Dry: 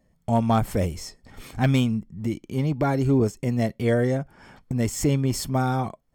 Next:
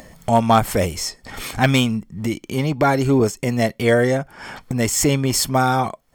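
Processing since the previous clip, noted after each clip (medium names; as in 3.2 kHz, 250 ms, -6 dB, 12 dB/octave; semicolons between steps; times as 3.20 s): bass shelf 450 Hz -10.5 dB; in parallel at -2.5 dB: upward compressor, threshold -29 dBFS; on the sum: trim +6.5 dB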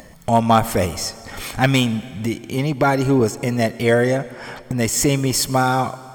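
reverberation RT60 2.4 s, pre-delay 89 ms, DRR 17 dB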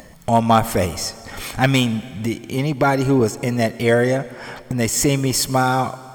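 crackle 440 per s -48 dBFS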